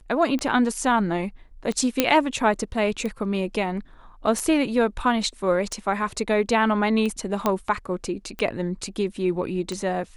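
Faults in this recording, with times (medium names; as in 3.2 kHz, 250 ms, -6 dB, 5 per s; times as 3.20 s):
tick 45 rpm -17 dBFS
2.00 s: pop -2 dBFS
7.46 s: pop -8 dBFS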